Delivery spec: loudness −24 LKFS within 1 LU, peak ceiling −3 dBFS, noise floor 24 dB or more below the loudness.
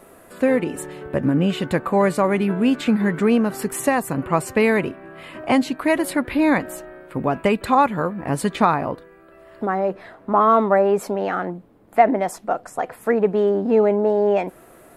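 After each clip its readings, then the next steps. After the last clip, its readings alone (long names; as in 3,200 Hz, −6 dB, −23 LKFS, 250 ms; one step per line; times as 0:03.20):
integrated loudness −20.5 LKFS; sample peak −1.5 dBFS; target loudness −24.0 LKFS
→ level −3.5 dB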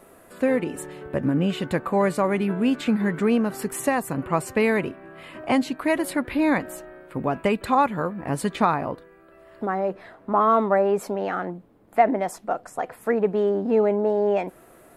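integrated loudness −24.0 LKFS; sample peak −5.0 dBFS; background noise floor −52 dBFS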